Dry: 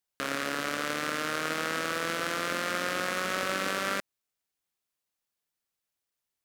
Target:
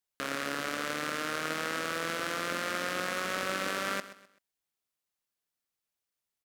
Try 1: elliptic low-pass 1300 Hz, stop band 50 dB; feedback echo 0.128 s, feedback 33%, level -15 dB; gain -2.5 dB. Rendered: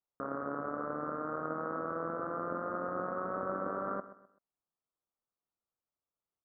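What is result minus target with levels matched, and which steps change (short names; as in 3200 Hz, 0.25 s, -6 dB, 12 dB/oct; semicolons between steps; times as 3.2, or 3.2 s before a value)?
1000 Hz band +3.0 dB
remove: elliptic low-pass 1300 Hz, stop band 50 dB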